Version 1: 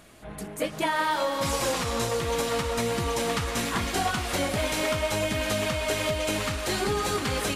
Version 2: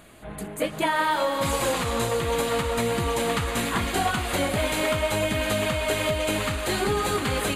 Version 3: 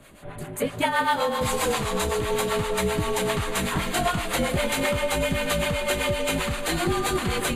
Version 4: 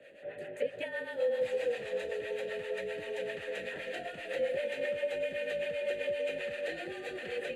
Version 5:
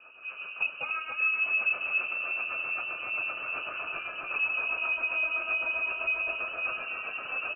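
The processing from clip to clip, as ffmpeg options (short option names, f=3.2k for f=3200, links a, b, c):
-af "equalizer=f=5.5k:t=o:w=0.3:g=-13.5,volume=2.5dB"
-filter_complex "[0:a]acrossover=split=590[a][b];[a]aeval=exprs='val(0)*(1-0.7/2+0.7/2*cos(2*PI*7.7*n/s))':c=same[c];[b]aeval=exprs='val(0)*(1-0.7/2-0.7/2*cos(2*PI*7.7*n/s))':c=same[d];[c][d]amix=inputs=2:normalize=0,afreqshift=-42,volume=3.5dB"
-filter_complex "[0:a]acrossover=split=160|400|7100[a][b][c][d];[a]acompressor=threshold=-36dB:ratio=4[e];[b]acompressor=threshold=-42dB:ratio=4[f];[c]acompressor=threshold=-34dB:ratio=4[g];[d]acompressor=threshold=-42dB:ratio=4[h];[e][f][g][h]amix=inputs=4:normalize=0,asplit=3[i][j][k];[i]bandpass=f=530:t=q:w=8,volume=0dB[l];[j]bandpass=f=1.84k:t=q:w=8,volume=-6dB[m];[k]bandpass=f=2.48k:t=q:w=8,volume=-9dB[n];[l][m][n]amix=inputs=3:normalize=0,volume=7.5dB"
-filter_complex "[0:a]asplit=2[a][b];[b]aecho=0:1:285:0.531[c];[a][c]amix=inputs=2:normalize=0,lowpass=f=2.6k:t=q:w=0.5098,lowpass=f=2.6k:t=q:w=0.6013,lowpass=f=2.6k:t=q:w=0.9,lowpass=f=2.6k:t=q:w=2.563,afreqshift=-3100,volume=2.5dB"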